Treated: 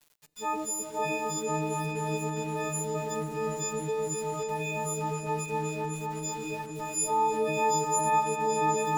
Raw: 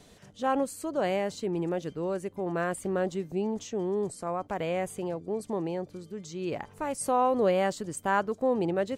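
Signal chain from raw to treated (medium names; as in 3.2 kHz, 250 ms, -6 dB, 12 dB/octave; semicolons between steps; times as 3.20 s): partials quantised in pitch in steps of 6 st; rippled EQ curve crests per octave 0.72, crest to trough 11 dB; small samples zeroed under -38 dBFS; delay with an opening low-pass 258 ms, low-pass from 400 Hz, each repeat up 2 oct, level 0 dB; reverberation RT60 2.6 s, pre-delay 4 ms, DRR 19.5 dB; trim -7 dB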